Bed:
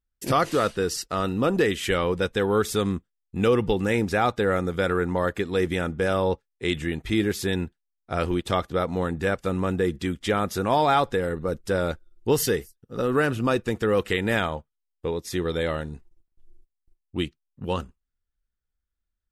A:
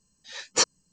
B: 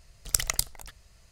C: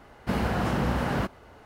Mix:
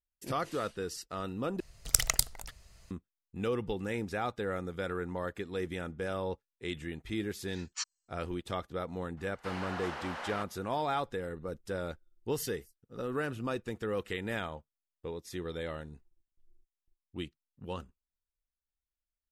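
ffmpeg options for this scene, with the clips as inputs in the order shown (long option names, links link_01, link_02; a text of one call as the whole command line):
ffmpeg -i bed.wav -i cue0.wav -i cue1.wav -i cue2.wav -filter_complex "[0:a]volume=-12dB[link_01];[1:a]highpass=frequency=1200:width=0.5412,highpass=frequency=1200:width=1.3066[link_02];[3:a]highpass=760,lowpass=7400[link_03];[link_01]asplit=2[link_04][link_05];[link_04]atrim=end=1.604[link_06];[2:a]atrim=end=1.31,asetpts=PTS-STARTPTS,volume=-0.5dB[link_07];[link_05]atrim=start=2.906[link_08];[link_02]atrim=end=0.92,asetpts=PTS-STARTPTS,volume=-15dB,afade=type=in:duration=0.004:curve=hsin,afade=type=out:start_time=0.916:duration=0.004:curve=hsin,adelay=7200[link_09];[link_03]atrim=end=1.65,asetpts=PTS-STARTPTS,volume=-7dB,afade=type=in:duration=0.004:curve=hsin,afade=type=out:start_time=1.646:duration=0.004:curve=hsin,adelay=9170[link_10];[link_06][link_07]acrossfade=duration=0.004:curve1=hsin:curve2=hsin[link_11];[link_11][link_08]acrossfade=duration=0.004:curve1=hsin:curve2=hsin[link_12];[link_12][link_09][link_10]amix=inputs=3:normalize=0" out.wav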